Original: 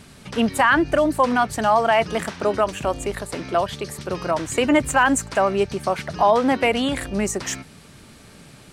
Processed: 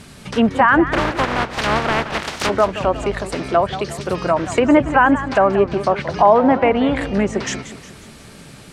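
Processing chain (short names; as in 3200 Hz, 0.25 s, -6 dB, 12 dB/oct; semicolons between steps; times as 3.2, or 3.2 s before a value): 0.92–2.49 spectral contrast lowered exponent 0.19; treble ducked by the level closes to 1600 Hz, closed at -16.5 dBFS; warbling echo 0.18 s, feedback 52%, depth 181 cents, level -13 dB; gain +5 dB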